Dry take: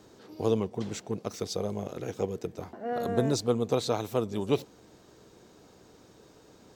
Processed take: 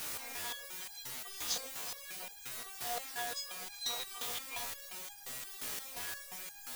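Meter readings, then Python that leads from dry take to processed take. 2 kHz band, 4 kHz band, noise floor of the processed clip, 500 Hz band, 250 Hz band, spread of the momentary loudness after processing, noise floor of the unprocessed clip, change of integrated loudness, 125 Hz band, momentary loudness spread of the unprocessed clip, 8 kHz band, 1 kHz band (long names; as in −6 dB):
+3.5 dB, +1.5 dB, −52 dBFS, −22.0 dB, −27.0 dB, 7 LU, −57 dBFS, −8.5 dB, −27.5 dB, 10 LU, +3.5 dB, −7.5 dB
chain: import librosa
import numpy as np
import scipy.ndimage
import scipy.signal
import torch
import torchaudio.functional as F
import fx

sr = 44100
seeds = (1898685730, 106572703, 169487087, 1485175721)

p1 = fx.dmg_wind(x, sr, seeds[0], corner_hz=490.0, level_db=-38.0)
p2 = fx.hum_notches(p1, sr, base_hz=60, count=8)
p3 = p2 + 0.31 * np.pad(p2, (int(3.2 * sr / 1000.0), 0))[:len(p2)]
p4 = p3 + 10.0 ** (-12.0 / 20.0) * np.pad(p3, (int(371 * sr / 1000.0), 0))[:len(p3)]
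p5 = fx.robotise(p4, sr, hz=240.0)
p6 = scipy.signal.sosfilt(scipy.signal.butter(2, 8800.0, 'lowpass', fs=sr, output='sos'), p5)
p7 = fx.schmitt(p6, sr, flips_db=-39.5)
p8 = p6 + (p7 * librosa.db_to_amplitude(-10.5))
p9 = fx.tilt_shelf(p8, sr, db=-10.0, hz=910.0)
p10 = fx.filter_lfo_highpass(p9, sr, shape='saw_down', hz=3.0, low_hz=480.0, high_hz=2200.0, q=1.8)
p11 = np.sign(p10) * np.maximum(np.abs(p10) - 10.0 ** (-50.0 / 20.0), 0.0)
p12 = fx.quant_dither(p11, sr, seeds[1], bits=6, dither='triangular')
p13 = fx.resonator_held(p12, sr, hz=5.7, low_hz=61.0, high_hz=810.0)
y = p13 * librosa.db_to_amplitude(3.0)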